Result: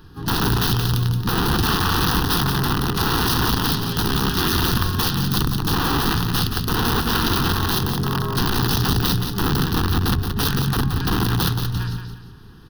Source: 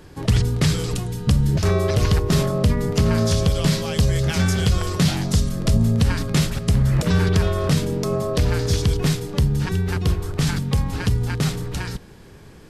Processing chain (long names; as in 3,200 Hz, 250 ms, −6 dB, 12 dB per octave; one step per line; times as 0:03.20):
dynamic equaliser 110 Hz, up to +6 dB, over −32 dBFS, Q 1.9
pitch-shifted copies added −3 semitones −16 dB, +7 semitones −8 dB
wrap-around overflow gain 12.5 dB
phaser with its sweep stopped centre 2,200 Hz, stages 6
on a send: repeating echo 175 ms, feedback 33%, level −7 dB